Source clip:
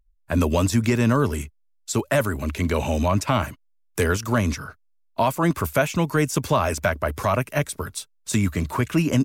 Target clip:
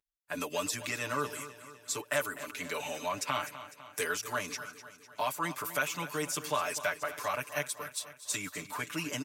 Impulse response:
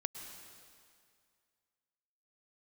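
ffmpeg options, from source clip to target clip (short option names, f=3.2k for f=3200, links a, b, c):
-af "highpass=f=1.4k:p=1,aecho=1:1:6.8:0.99,aecho=1:1:251|502|753|1004|1255|1506:0.2|0.11|0.0604|0.0332|0.0183|0.01,volume=-7.5dB"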